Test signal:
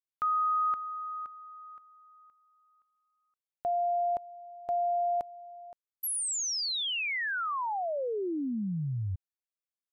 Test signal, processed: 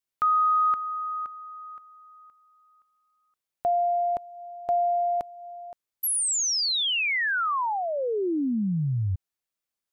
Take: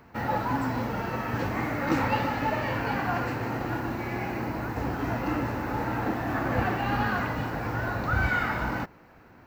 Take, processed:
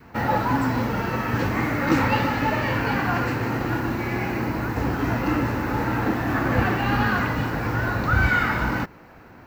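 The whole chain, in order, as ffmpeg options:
-af "acontrast=67,adynamicequalizer=threshold=0.0178:dfrequency=700:dqfactor=1.8:tfrequency=700:tqfactor=1.8:attack=5:release=100:ratio=0.375:range=2.5:mode=cutabove:tftype=bell"

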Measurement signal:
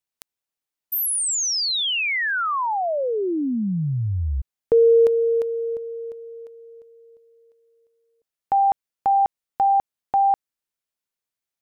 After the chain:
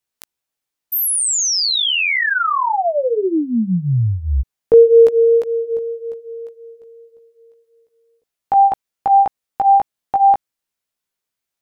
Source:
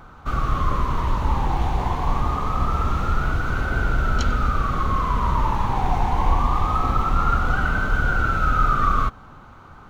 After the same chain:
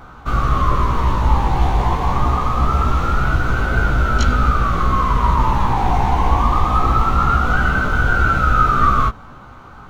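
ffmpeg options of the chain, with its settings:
-af "flanger=delay=15.5:depth=2.1:speed=1.8,volume=2.66"

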